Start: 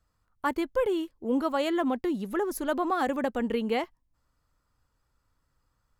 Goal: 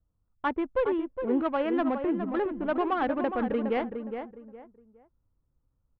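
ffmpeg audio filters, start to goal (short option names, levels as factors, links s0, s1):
-filter_complex "[0:a]adynamicsmooth=sensitivity=3:basefreq=540,lowpass=f=3100:w=0.5412,lowpass=f=3100:w=1.3066,asplit=2[s0][s1];[s1]adelay=413,lowpass=f=1800:p=1,volume=0.447,asplit=2[s2][s3];[s3]adelay=413,lowpass=f=1800:p=1,volume=0.28,asplit=2[s4][s5];[s5]adelay=413,lowpass=f=1800:p=1,volume=0.28[s6];[s0][s2][s4][s6]amix=inputs=4:normalize=0"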